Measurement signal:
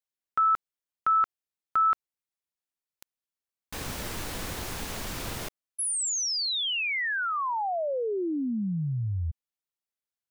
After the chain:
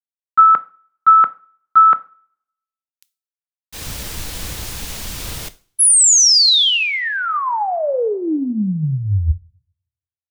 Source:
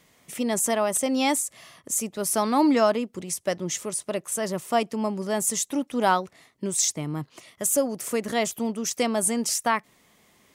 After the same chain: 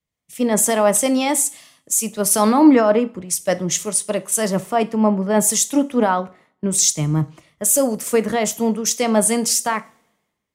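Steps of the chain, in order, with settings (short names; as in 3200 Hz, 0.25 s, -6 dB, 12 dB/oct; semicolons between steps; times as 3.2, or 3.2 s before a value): limiter -18 dBFS; two-slope reverb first 0.43 s, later 1.8 s, from -21 dB, DRR 11.5 dB; three-band expander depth 100%; gain +9 dB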